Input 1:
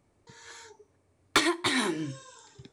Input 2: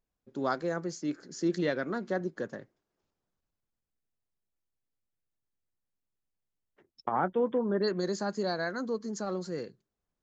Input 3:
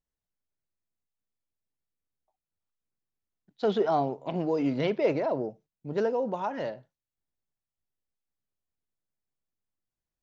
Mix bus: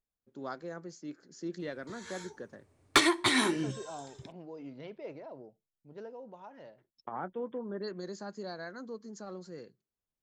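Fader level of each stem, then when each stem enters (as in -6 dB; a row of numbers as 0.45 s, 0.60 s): +0.5 dB, -9.5 dB, -18.0 dB; 1.60 s, 0.00 s, 0.00 s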